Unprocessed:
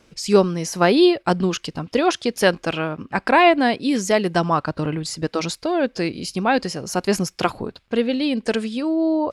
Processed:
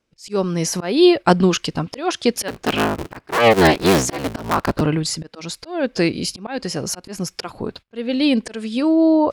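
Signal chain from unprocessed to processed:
0:02.48–0:04.81: sub-harmonics by changed cycles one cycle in 3, inverted
noise gate −41 dBFS, range −24 dB
volume swells 345 ms
level +5.5 dB

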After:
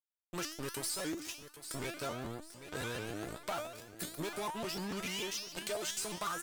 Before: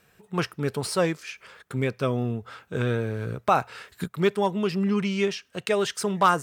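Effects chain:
bass and treble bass −2 dB, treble +15 dB
fuzz pedal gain 28 dB, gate −32 dBFS
parametric band 150 Hz −3 dB 2 octaves
tuned comb filter 320 Hz, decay 0.45 s, harmonics all, mix 90%
on a send: repeating echo 793 ms, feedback 31%, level −15.5 dB
on the sum: downward compressor 4 to 1, threshold −36 dBFS, peak gain reduction 8.5 dB
regular buffer underruns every 0.14 s, samples 512, repeat, from 0:00.98
pitch modulation by a square or saw wave saw up 6.7 Hz, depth 160 cents

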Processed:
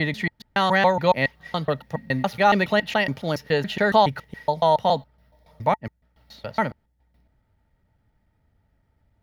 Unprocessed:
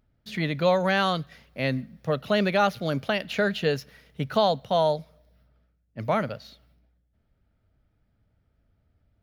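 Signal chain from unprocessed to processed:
slices reordered back to front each 140 ms, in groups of 4
hollow resonant body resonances 890/1,900 Hz, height 13 dB, ringing for 40 ms
level +2 dB

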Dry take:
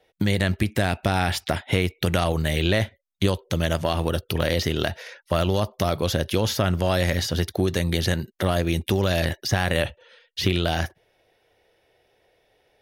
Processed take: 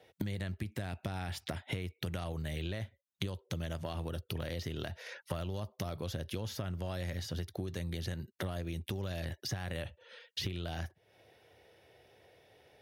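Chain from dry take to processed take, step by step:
high-pass filter 78 Hz 24 dB per octave
low-shelf EQ 120 Hz +10.5 dB
downward compressor 6 to 1, threshold −38 dBFS, peak gain reduction 23 dB
level +1 dB

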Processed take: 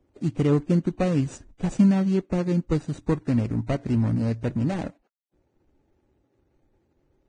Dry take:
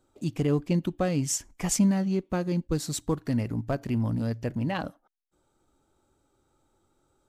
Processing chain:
running median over 41 samples
level +4.5 dB
Ogg Vorbis 16 kbit/s 22,050 Hz

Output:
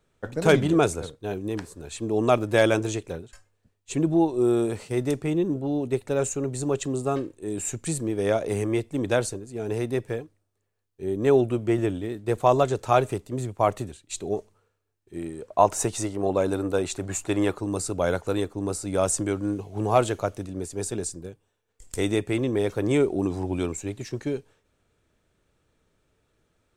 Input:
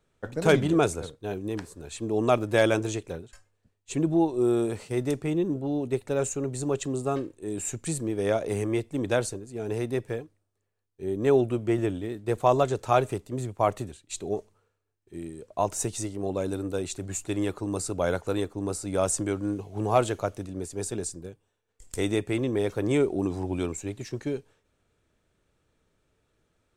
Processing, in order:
0:15.16–0:17.55: parametric band 1,000 Hz +7 dB 2.5 octaves
level +2 dB

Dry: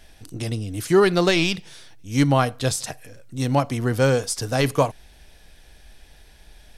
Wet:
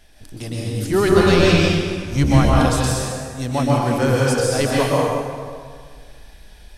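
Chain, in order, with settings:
0:00.91–0:02.48: sub-octave generator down 1 octave, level +1 dB
dense smooth reverb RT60 1.9 s, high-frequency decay 0.7×, pre-delay 110 ms, DRR −5 dB
level −2.5 dB

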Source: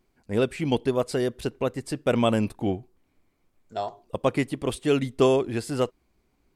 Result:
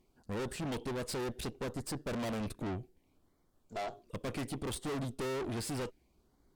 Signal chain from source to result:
auto-filter notch sine 0.66 Hz 790–2,600 Hz
tube saturation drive 38 dB, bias 0.7
level +3 dB

